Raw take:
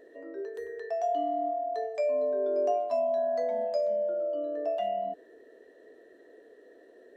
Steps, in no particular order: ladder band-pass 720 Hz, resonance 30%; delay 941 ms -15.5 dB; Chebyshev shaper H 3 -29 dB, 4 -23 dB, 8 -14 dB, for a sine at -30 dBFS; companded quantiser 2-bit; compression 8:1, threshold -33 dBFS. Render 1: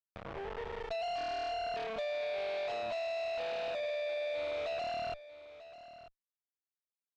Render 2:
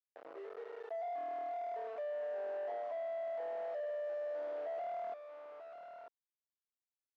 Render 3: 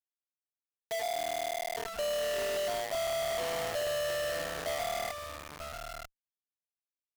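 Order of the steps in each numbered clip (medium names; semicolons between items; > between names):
companded quantiser > ladder band-pass > compression > Chebyshev shaper > delay; companded quantiser > delay > Chebyshev shaper > ladder band-pass > compression; ladder band-pass > compression > companded quantiser > delay > Chebyshev shaper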